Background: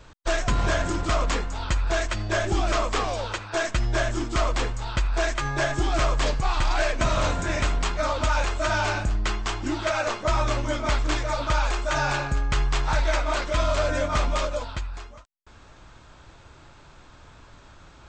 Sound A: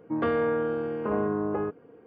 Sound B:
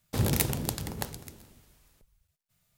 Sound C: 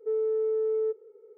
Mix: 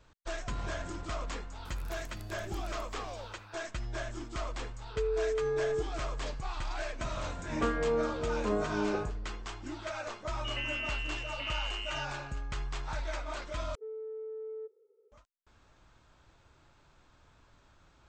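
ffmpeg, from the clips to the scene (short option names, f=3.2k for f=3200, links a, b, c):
-filter_complex "[3:a]asplit=2[a][b];[1:a]asplit=2[c][d];[0:a]volume=-13.5dB[e];[2:a]acompressor=threshold=-33dB:ratio=6:attack=3.2:release=140:knee=1:detection=peak[f];[c]asplit=2[g][h];[h]adelay=7.5,afreqshift=-2.6[i];[g][i]amix=inputs=2:normalize=1[j];[d]lowpass=f=2.7k:t=q:w=0.5098,lowpass=f=2.7k:t=q:w=0.6013,lowpass=f=2.7k:t=q:w=0.9,lowpass=f=2.7k:t=q:w=2.563,afreqshift=-3200[k];[e]asplit=2[l][m];[l]atrim=end=13.754[n];[b]atrim=end=1.37,asetpts=PTS-STARTPTS,volume=-14dB[o];[m]atrim=start=15.116[p];[f]atrim=end=2.77,asetpts=PTS-STARTPTS,volume=-15dB,afade=t=in:d=0.004:c=hsin,afade=t=out:st=2.766:d=0.004:c=hsin,adelay=1520[q];[a]atrim=end=1.37,asetpts=PTS-STARTPTS,volume=-4.5dB,afade=t=in:d=0.004:c=hsin,afade=t=out:st=1.366:d=0.004:c=hsin,adelay=4900[r];[j]atrim=end=2.06,asetpts=PTS-STARTPTS,volume=-1.5dB,afade=t=in:d=0.004:c=hsin,afade=t=out:st=2.056:d=0.004:c=hsin,adelay=7390[s];[k]atrim=end=2.06,asetpts=PTS-STARTPTS,volume=-12dB,afade=t=in:d=0.004:c=hsin,afade=t=out:st=2.056:d=0.004:c=hsin,adelay=455994S[t];[n][o]acrossfade=d=0.004:c1=hsin:c2=hsin[u];[u][p]acrossfade=d=0.004:c1=hsin:c2=hsin[v];[v][q][r][s][t]amix=inputs=5:normalize=0"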